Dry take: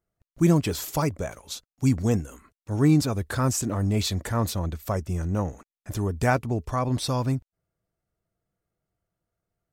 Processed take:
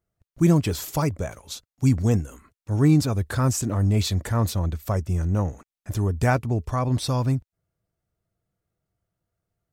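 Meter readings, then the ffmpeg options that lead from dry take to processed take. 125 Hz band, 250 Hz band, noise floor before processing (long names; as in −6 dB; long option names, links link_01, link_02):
+3.5 dB, +1.0 dB, below −85 dBFS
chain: -af "equalizer=frequency=95:width_type=o:width=1.4:gain=5"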